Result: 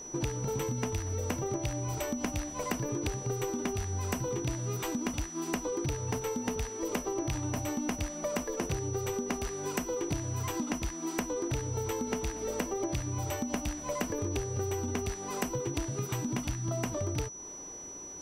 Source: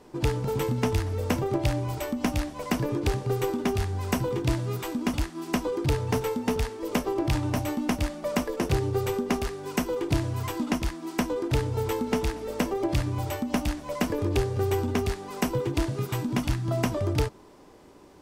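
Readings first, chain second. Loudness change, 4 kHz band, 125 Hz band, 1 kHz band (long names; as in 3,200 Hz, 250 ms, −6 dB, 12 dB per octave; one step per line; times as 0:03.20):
−5.5 dB, −6.5 dB, −6.5 dB, −6.0 dB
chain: downward compressor, threshold −32 dBFS, peak gain reduction 12.5 dB
steady tone 5,900 Hz −44 dBFS
level +1.5 dB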